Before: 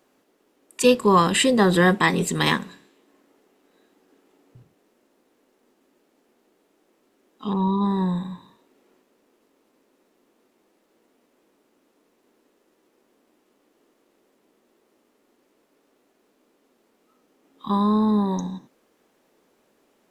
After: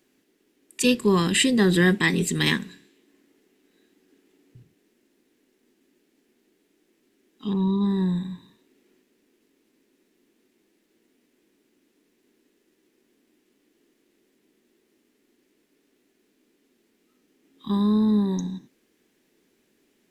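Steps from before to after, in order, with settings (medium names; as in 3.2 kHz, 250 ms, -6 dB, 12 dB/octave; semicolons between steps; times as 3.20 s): high-order bell 820 Hz -11 dB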